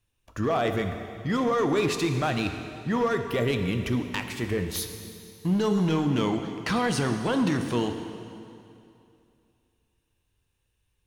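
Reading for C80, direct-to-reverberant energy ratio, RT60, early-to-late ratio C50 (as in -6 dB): 8.0 dB, 6.0 dB, 2.6 s, 7.0 dB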